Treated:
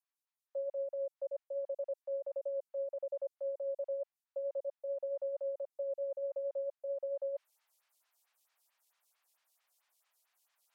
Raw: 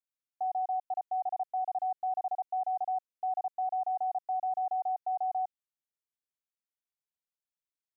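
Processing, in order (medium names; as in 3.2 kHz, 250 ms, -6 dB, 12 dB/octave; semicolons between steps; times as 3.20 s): high-pass 880 Hz 24 dB/octave; reverse; upward compressor, threshold -60 dBFS; reverse; speed mistake 45 rpm record played at 33 rpm; lamp-driven phase shifter 4.5 Hz; trim +2.5 dB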